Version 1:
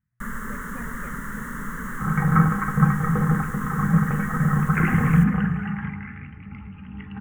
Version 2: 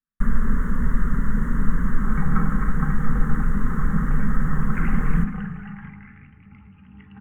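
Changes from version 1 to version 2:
speech: muted
first sound: add spectral tilt −3.5 dB per octave
second sound −8.5 dB

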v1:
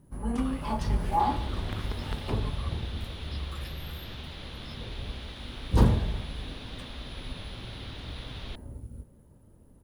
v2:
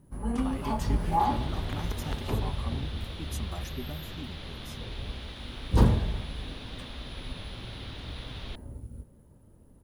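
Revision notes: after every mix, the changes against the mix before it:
speech: remove linear-phase brick-wall band-pass 1,000–5,500 Hz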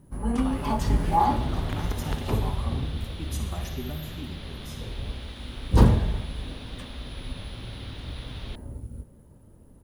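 speech: send on
first sound +4.0 dB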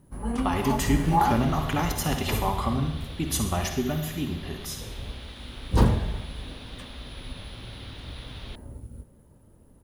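speech +12.0 dB
master: add low-shelf EQ 470 Hz −3.5 dB

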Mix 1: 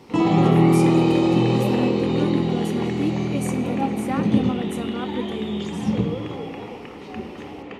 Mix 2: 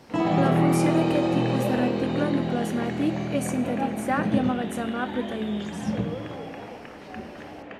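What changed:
background −5.5 dB
master: add thirty-one-band graphic EQ 400 Hz −4 dB, 630 Hz +11 dB, 1,600 Hz +12 dB

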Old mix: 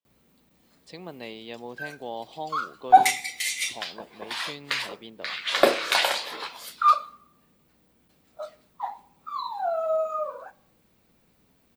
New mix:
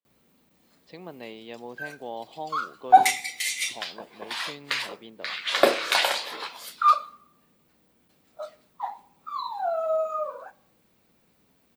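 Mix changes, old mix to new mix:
speech: add high-frequency loss of the air 190 metres
master: add low-shelf EQ 91 Hz −8.5 dB

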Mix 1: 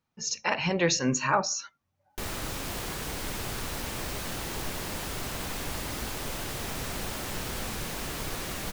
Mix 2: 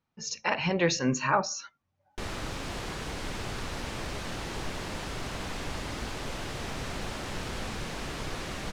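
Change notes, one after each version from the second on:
master: add high-frequency loss of the air 69 metres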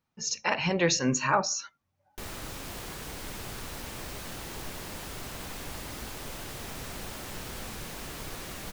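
background −5.0 dB
master: remove high-frequency loss of the air 69 metres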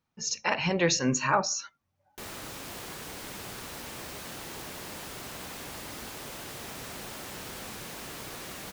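background: add high-pass filter 150 Hz 6 dB per octave

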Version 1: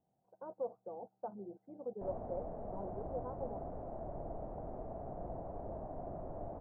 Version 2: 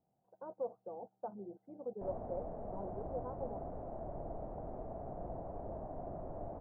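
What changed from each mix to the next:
nothing changed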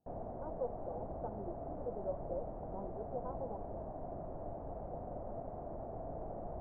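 background: entry −1.95 s

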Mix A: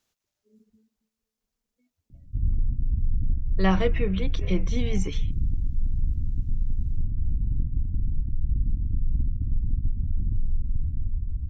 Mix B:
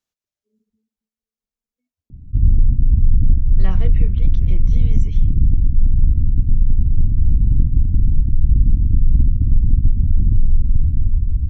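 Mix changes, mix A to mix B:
speech −9.5 dB
background +11.5 dB

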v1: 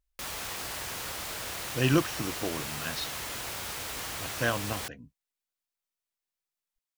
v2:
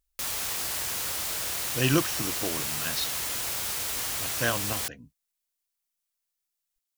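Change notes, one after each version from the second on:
master: add high-shelf EQ 4,200 Hz +9.5 dB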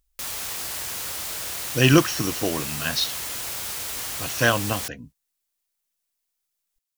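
speech +8.0 dB

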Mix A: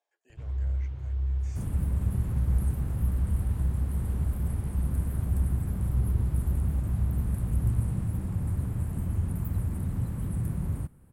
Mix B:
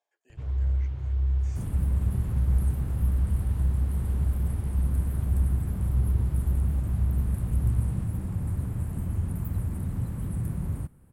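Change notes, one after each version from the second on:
first sound +3.5 dB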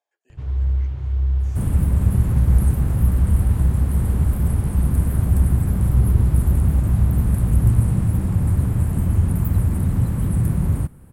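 first sound +5.5 dB
second sound +11.0 dB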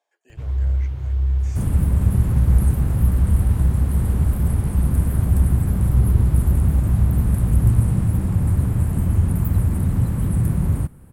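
speech +8.0 dB
first sound: remove high-frequency loss of the air 56 metres

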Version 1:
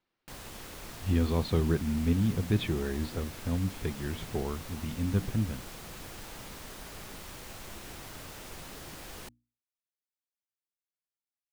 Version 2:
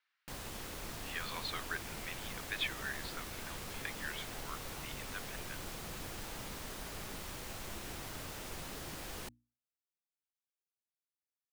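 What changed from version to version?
speech: add high-pass with resonance 1,600 Hz, resonance Q 1.8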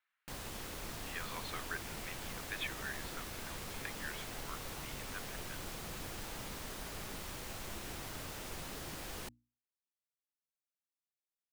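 speech: add high-frequency loss of the air 260 metres

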